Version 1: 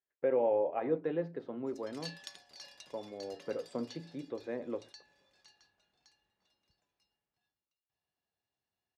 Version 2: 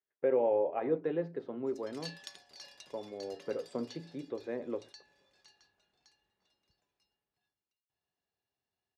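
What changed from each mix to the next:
master: add peaking EQ 400 Hz +4.5 dB 0.24 oct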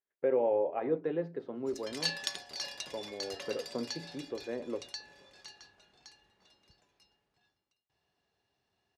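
background +12.0 dB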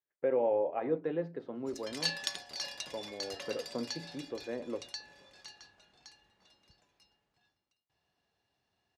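master: add peaking EQ 400 Hz -4.5 dB 0.24 oct

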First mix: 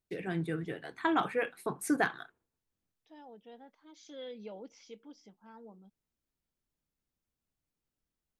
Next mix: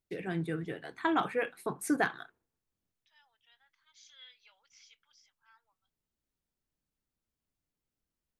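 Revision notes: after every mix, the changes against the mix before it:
second voice: add high-pass 1.4 kHz 24 dB/octave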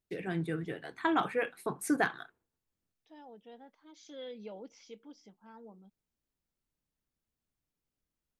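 second voice: remove high-pass 1.4 kHz 24 dB/octave

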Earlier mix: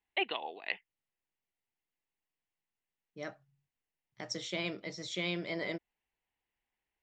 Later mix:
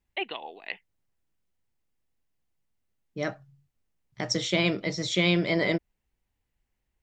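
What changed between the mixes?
second voice +10.5 dB; master: add bass shelf 160 Hz +9.5 dB

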